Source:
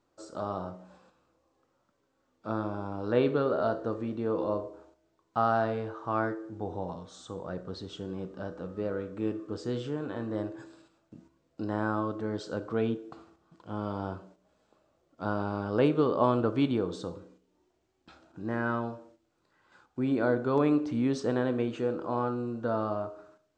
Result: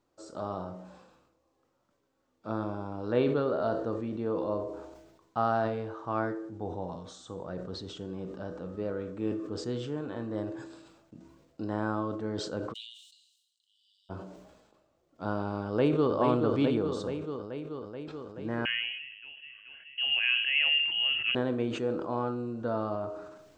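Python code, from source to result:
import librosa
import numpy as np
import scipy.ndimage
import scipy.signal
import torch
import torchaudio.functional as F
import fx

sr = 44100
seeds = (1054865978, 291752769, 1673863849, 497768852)

y = fx.cheby_ripple_highpass(x, sr, hz=2800.0, ripple_db=9, at=(12.72, 14.09), fade=0.02)
y = fx.echo_throw(y, sr, start_s=15.66, length_s=0.47, ms=430, feedback_pct=75, wet_db=-5.5)
y = fx.freq_invert(y, sr, carrier_hz=3100, at=(18.65, 21.35))
y = fx.peak_eq(y, sr, hz=1400.0, db=-2.0, octaves=0.77)
y = fx.sustainer(y, sr, db_per_s=50.0)
y = y * 10.0 ** (-1.5 / 20.0)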